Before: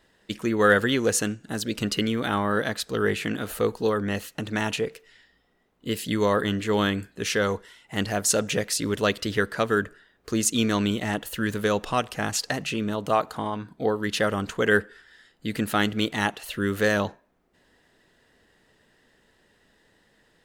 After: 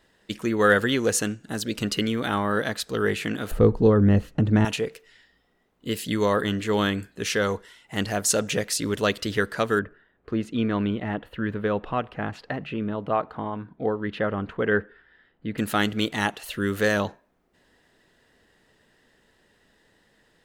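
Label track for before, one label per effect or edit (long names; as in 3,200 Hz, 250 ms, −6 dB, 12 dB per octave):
3.510000	4.650000	spectral tilt −4.5 dB per octave
9.790000	15.580000	high-frequency loss of the air 490 metres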